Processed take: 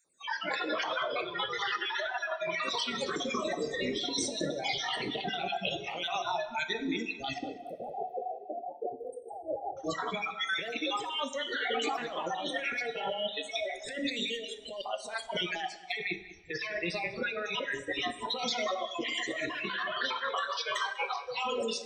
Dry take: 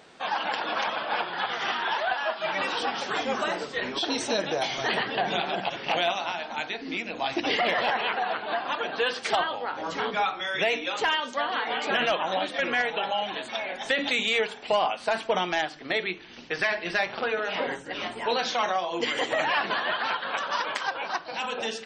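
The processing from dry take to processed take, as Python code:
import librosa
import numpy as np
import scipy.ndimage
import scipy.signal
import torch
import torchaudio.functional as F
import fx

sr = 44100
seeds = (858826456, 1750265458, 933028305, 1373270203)

y = fx.spec_dropout(x, sr, seeds[0], share_pct=37)
y = fx.noise_reduce_blind(y, sr, reduce_db=29)
y = fx.over_compress(y, sr, threshold_db=-34.0, ratio=-1.0)
y = fx.brickwall_bandstop(y, sr, low_hz=860.0, high_hz=8000.0, at=(7.38, 9.77))
y = fx.echo_filtered(y, sr, ms=195, feedback_pct=33, hz=3200.0, wet_db=-15.5)
y = fx.rev_double_slope(y, sr, seeds[1], early_s=0.65, late_s=2.2, knee_db=-18, drr_db=10.0)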